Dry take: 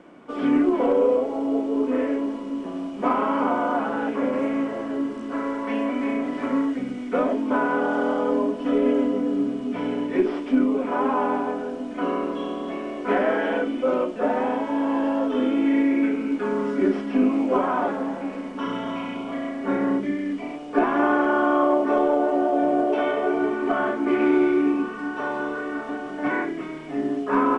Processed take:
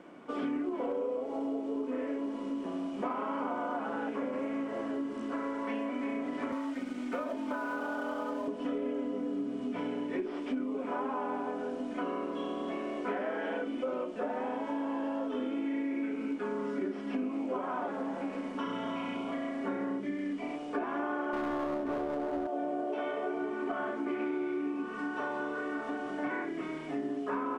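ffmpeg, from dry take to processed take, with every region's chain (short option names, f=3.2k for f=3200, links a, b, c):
-filter_complex "[0:a]asettb=1/sr,asplit=3[a][b][c];[a]atrim=end=6.524[d];[b]atrim=start=6.52:end=8.48,asetpts=PTS-STARTPTS,afade=t=in:d=0.004:c=qsin,afade=t=out:st=1.956:d=0.004:c=qsin,aecho=1:1:3.3:0.71,atrim=end_sample=86436,acrossover=split=230|630[e][f][g];[e]acompressor=threshold=-37dB:ratio=4[h];[f]acompressor=threshold=-31dB:ratio=4[i];[g]acompressor=threshold=-26dB:ratio=4[j];[h][i][j]amix=inputs=3:normalize=0,aeval=exprs='sgn(val(0))*max(abs(val(0))-0.00501,0)':c=same[k];[c]atrim=start=8.476[l];[d][k]acrossfade=d=0.004:c1=hsin:c2=qsin[m];[m][l]acrossfade=d=0.004:c1=qsin:c2=hsin,asettb=1/sr,asplit=3[n][o][p];[n]atrim=end=21.334[q];[o]atrim=start=21.33:end=22.47,asetpts=PTS-STARTPTS,afade=t=in:d=0.004:c=qsin,afade=t=out:st=1.136:d=0.004:c=qsin,lowshelf=f=340:g=9,aeval=exprs='clip(val(0),-1,0.119)':c=same[r];[p]atrim=start=22.466[s];[q][r]acrossfade=d=0.004:c1=hsin:c2=qsin[t];[t][s]acrossfade=d=0.004:c1=qsin:c2=hsin,lowshelf=f=93:g=-7,acompressor=threshold=-29dB:ratio=5,volume=-3dB"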